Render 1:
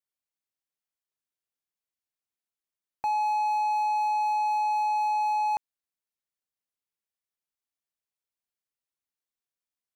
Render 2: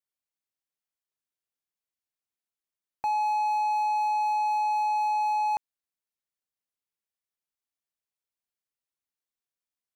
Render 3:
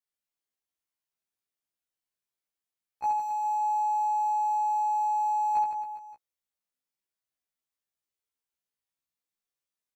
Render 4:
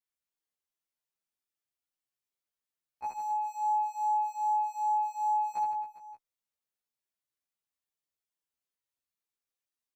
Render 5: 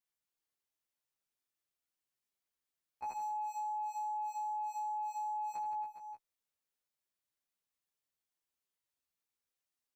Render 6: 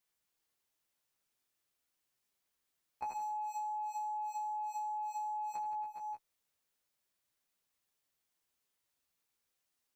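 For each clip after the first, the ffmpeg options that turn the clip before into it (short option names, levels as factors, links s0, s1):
-af anull
-filter_complex "[0:a]asplit=2[s0][s1];[s1]aecho=0:1:70|157.5|266.9|403.6|574.5:0.631|0.398|0.251|0.158|0.1[s2];[s0][s2]amix=inputs=2:normalize=0,afftfilt=real='re*1.73*eq(mod(b,3),0)':imag='im*1.73*eq(mod(b,3),0)':win_size=2048:overlap=0.75"
-filter_complex "[0:a]asplit=2[s0][s1];[s1]adelay=7,afreqshift=2.5[s2];[s0][s2]amix=inputs=2:normalize=1"
-af "alimiter=level_in=3.35:limit=0.0631:level=0:latency=1,volume=0.299"
-af "acompressor=threshold=0.00631:ratio=6,volume=2.11"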